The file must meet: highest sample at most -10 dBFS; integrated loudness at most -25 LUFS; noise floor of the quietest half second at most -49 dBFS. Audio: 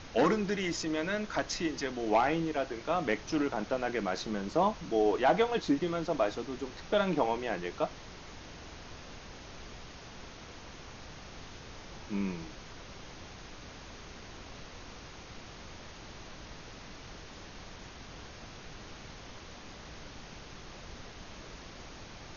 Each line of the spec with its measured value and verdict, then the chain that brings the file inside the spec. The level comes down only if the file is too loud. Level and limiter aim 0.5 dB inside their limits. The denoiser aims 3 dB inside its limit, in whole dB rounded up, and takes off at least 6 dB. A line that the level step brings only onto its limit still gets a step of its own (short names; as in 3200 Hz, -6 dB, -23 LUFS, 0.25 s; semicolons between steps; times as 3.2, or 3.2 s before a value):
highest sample -14.0 dBFS: OK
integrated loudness -31.5 LUFS: OK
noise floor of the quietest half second -48 dBFS: fail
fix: denoiser 6 dB, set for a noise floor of -48 dBFS